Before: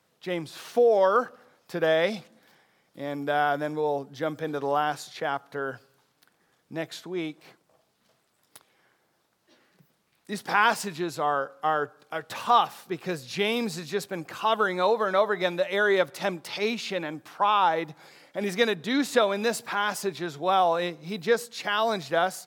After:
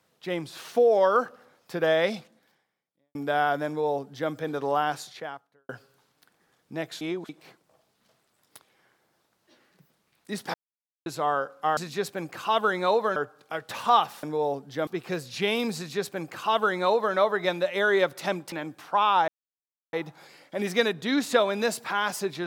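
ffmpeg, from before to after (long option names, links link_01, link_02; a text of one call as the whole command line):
ffmpeg -i in.wav -filter_complex "[0:a]asplit=13[link_01][link_02][link_03][link_04][link_05][link_06][link_07][link_08][link_09][link_10][link_11][link_12][link_13];[link_01]atrim=end=3.15,asetpts=PTS-STARTPTS,afade=type=out:start_time=2.11:duration=1.04:curve=qua[link_14];[link_02]atrim=start=3.15:end=5.69,asetpts=PTS-STARTPTS,afade=type=in:duration=0.004:curve=hsin,afade=type=out:start_time=1.89:duration=0.65:curve=qua[link_15];[link_03]atrim=start=5.69:end=7.012,asetpts=PTS-STARTPTS,afade=type=in:duration=0.004:curve=hsin[link_16];[link_04]atrim=start=7.008:end=7.292,asetpts=PTS-STARTPTS,areverse[link_17];[link_05]atrim=start=7.288:end=10.54,asetpts=PTS-STARTPTS,afade=type=out:start_time=3.248:duration=0.004:curve=hsin[link_18];[link_06]atrim=start=10.54:end=11.06,asetpts=PTS-STARTPTS,volume=0[link_19];[link_07]atrim=start=11.06:end=11.772,asetpts=PTS-STARTPTS,afade=type=in:duration=0.004:curve=hsin[link_20];[link_08]atrim=start=13.728:end=15.122[link_21];[link_09]atrim=start=11.768:end=12.842[link_22];[link_10]atrim=start=3.668:end=4.312[link_23];[link_11]atrim=start=12.838:end=16.492[link_24];[link_12]atrim=start=16.988:end=17.75,asetpts=PTS-STARTPTS,afade=type=out:start_time=0.758:duration=0.004:curve=hsin,apad=pad_dur=0.65[link_25];[link_13]atrim=start=17.75,asetpts=PTS-STARTPTS,afade=type=in:duration=0.004:curve=hsin[link_26];[link_14][link_15][link_16]concat=n=3:v=0:a=1[link_27];[link_27][link_17]acrossfade=duration=0.004:curve1=hsin:curve2=hsin[link_28];[link_18][link_19][link_20]concat=n=3:v=0:a=1[link_29];[link_28][link_29]acrossfade=duration=0.004:curve1=hsin:curve2=hsin[link_30];[link_30][link_21]acrossfade=duration=0.004:curve1=hsin:curve2=hsin[link_31];[link_31][link_22]acrossfade=duration=0.004:curve1=hsin:curve2=hsin[link_32];[link_32][link_23]acrossfade=duration=0.004:curve1=hsin:curve2=hsin[link_33];[link_33][link_24]acrossfade=duration=0.004:curve1=hsin:curve2=hsin[link_34];[link_25][link_26]concat=n=2:v=0:a=1[link_35];[link_34][link_35]acrossfade=duration=0.004:curve1=hsin:curve2=hsin" out.wav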